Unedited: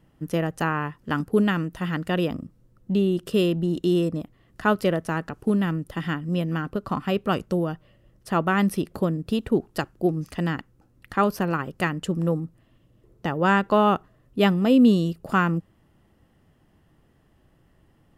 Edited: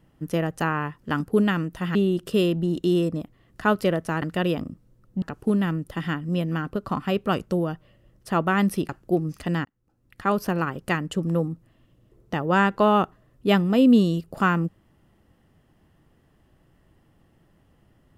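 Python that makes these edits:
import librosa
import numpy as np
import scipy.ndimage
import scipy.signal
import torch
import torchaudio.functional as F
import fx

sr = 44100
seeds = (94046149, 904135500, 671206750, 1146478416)

y = fx.edit(x, sr, fx.move(start_s=1.95, length_s=1.0, to_s=5.22),
    fx.cut(start_s=8.89, length_s=0.92),
    fx.fade_in_span(start_s=10.57, length_s=0.8), tone=tone)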